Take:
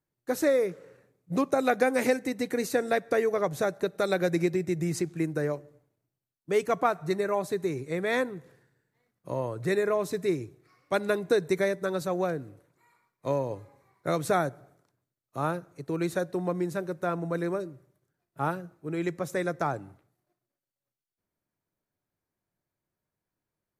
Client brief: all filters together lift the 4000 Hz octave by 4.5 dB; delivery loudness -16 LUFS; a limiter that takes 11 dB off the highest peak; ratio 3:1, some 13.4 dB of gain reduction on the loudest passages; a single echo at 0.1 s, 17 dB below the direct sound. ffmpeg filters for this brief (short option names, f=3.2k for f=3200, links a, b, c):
-af "equalizer=f=4k:t=o:g=5,acompressor=threshold=-38dB:ratio=3,alimiter=level_in=9.5dB:limit=-24dB:level=0:latency=1,volume=-9.5dB,aecho=1:1:100:0.141,volume=27.5dB"